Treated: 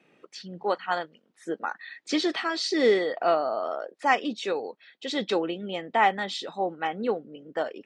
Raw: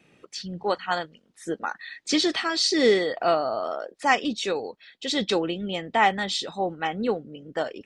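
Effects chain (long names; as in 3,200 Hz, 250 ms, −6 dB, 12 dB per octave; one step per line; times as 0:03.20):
Bessel high-pass filter 270 Hz, order 2
high-shelf EQ 3,800 Hz −11.5 dB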